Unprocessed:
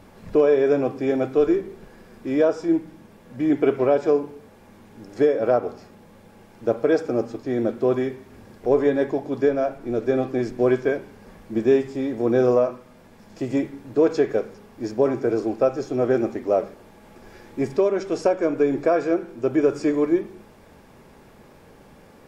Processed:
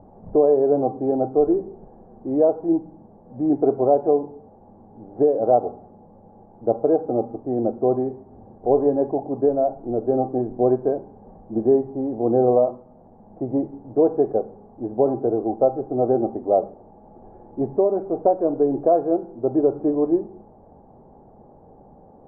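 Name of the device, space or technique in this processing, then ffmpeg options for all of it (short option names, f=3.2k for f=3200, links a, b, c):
under water: -af "lowpass=f=830:w=0.5412,lowpass=f=830:w=1.3066,equalizer=f=770:t=o:w=0.35:g=10"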